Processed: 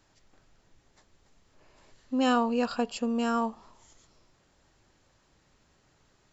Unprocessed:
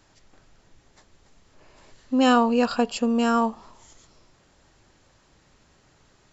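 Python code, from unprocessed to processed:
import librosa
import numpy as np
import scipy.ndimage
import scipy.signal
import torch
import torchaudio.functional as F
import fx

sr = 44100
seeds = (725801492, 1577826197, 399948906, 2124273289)

y = x * librosa.db_to_amplitude(-6.5)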